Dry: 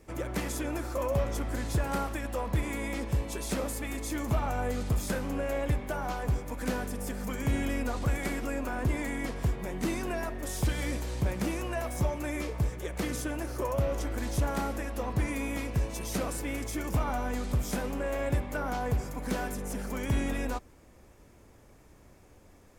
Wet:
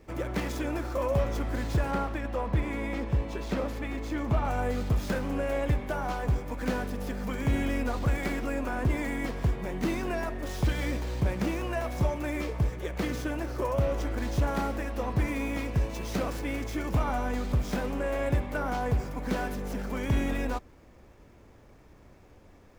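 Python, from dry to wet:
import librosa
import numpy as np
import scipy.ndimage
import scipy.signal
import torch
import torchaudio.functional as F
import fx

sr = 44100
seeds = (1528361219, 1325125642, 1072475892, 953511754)

y = scipy.ndimage.median_filter(x, 5, mode='constant')
y = fx.high_shelf(y, sr, hz=5100.0, db=-10.5, at=(1.91, 4.45))
y = y * 10.0 ** (2.0 / 20.0)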